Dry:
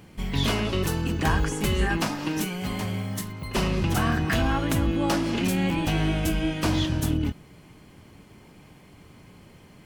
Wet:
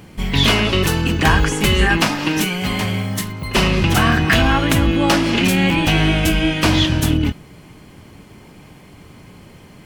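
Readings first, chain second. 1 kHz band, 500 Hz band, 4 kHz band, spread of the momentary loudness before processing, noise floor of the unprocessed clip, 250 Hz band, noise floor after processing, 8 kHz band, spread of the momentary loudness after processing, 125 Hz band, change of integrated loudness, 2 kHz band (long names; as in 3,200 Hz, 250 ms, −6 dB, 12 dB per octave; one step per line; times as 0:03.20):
+9.5 dB, +8.5 dB, +13.0 dB, 6 LU, −51 dBFS, +8.0 dB, −43 dBFS, +9.0 dB, 6 LU, +8.0 dB, +9.5 dB, +12.5 dB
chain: dynamic equaliser 2,600 Hz, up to +6 dB, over −44 dBFS, Q 0.79
level +8 dB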